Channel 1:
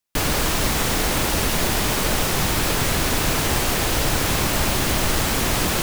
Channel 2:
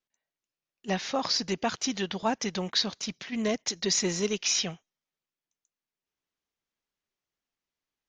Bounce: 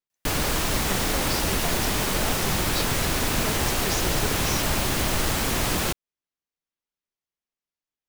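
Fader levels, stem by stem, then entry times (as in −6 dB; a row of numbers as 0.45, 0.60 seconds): −3.5, −6.5 decibels; 0.10, 0.00 seconds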